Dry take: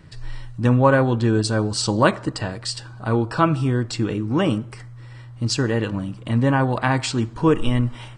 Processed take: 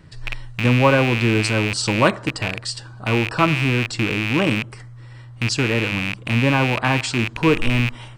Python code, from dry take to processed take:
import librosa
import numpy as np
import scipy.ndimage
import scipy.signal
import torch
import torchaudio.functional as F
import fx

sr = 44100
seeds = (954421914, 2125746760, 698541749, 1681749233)

y = fx.rattle_buzz(x, sr, strikes_db=-30.0, level_db=-11.0)